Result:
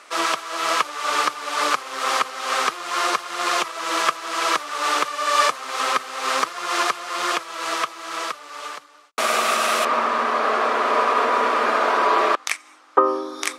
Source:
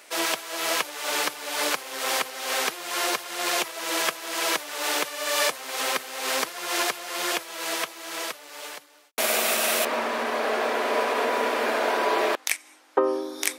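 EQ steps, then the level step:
low-pass filter 7,900 Hz 12 dB per octave
parametric band 1,200 Hz +13.5 dB 0.39 octaves
+1.5 dB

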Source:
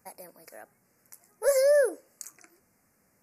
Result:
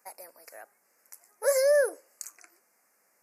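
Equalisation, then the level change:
high-pass filter 540 Hz 12 dB per octave
+1.5 dB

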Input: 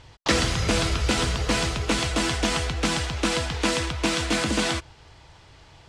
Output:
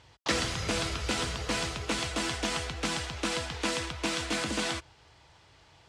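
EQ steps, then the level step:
high-pass filter 51 Hz
low-shelf EQ 340 Hz −4 dB
−6.0 dB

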